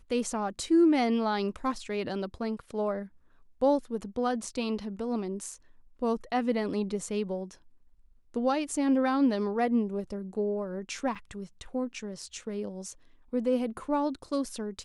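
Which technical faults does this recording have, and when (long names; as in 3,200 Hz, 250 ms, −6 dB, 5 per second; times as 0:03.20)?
0:11.15: drop-out 4.7 ms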